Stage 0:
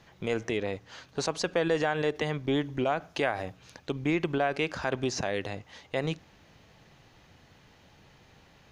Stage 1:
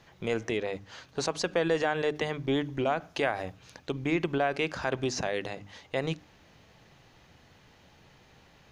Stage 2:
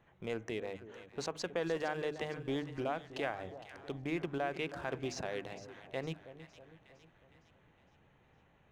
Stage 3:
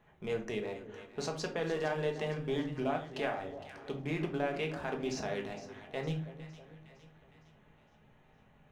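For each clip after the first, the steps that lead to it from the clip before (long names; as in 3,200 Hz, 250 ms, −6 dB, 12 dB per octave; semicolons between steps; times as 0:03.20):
mains-hum notches 50/100/150/200/250/300 Hz
adaptive Wiener filter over 9 samples; echo with a time of its own for lows and highs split 940 Hz, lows 320 ms, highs 460 ms, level −13 dB; level −8.5 dB
rectangular room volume 300 cubic metres, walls furnished, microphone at 1.4 metres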